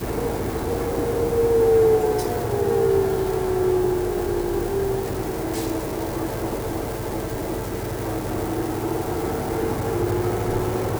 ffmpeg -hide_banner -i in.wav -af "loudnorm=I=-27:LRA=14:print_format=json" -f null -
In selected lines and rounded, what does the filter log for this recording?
"input_i" : "-23.7",
"input_tp" : "-9.4",
"input_lra" : "6.7",
"input_thresh" : "-33.7",